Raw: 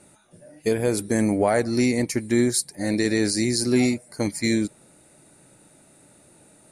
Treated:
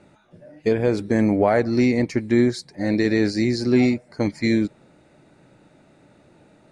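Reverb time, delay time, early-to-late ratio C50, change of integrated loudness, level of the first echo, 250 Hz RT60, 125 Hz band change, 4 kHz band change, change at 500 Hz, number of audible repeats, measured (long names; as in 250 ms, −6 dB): no reverb audible, no echo audible, no reverb audible, +2.0 dB, no echo audible, no reverb audible, +3.0 dB, −3.5 dB, +2.5 dB, no echo audible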